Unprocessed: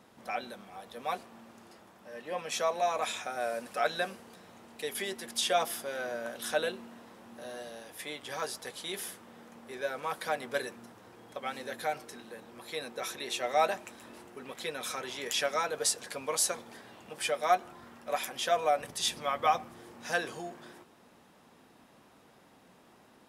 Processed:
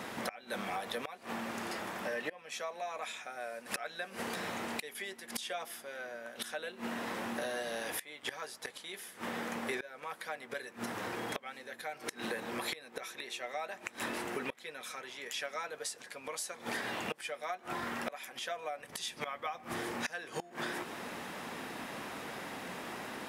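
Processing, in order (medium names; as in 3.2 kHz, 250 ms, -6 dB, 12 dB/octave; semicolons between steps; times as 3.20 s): bass shelf 140 Hz -7 dB; inverted gate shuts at -32 dBFS, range -25 dB; compression 12:1, threshold -52 dBFS, peak gain reduction 13.5 dB; peaking EQ 2 kHz +6 dB 0.97 oct; trim +16.5 dB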